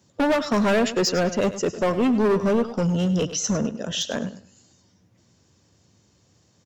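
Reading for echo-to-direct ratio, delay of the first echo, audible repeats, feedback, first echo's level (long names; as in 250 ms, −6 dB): −13.5 dB, 103 ms, 2, 24%, −13.5 dB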